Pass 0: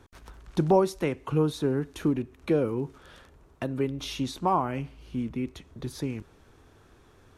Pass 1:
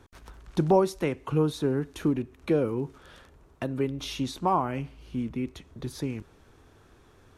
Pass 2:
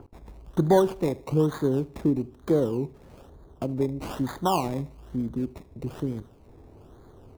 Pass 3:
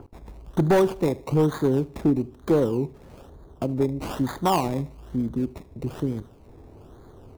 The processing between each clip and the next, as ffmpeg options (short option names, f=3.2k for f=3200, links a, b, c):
-af anull
-filter_complex "[0:a]acrossover=split=1000[a][b];[a]acompressor=mode=upward:threshold=-44dB:ratio=2.5[c];[b]acrusher=samples=23:mix=1:aa=0.000001:lfo=1:lforange=13.8:lforate=1.1[d];[c][d]amix=inputs=2:normalize=0,aecho=1:1:76|152|228:0.0891|0.0348|0.0136,volume=2dB"
-af "volume=16.5dB,asoftclip=hard,volume=-16.5dB,volume=3dB"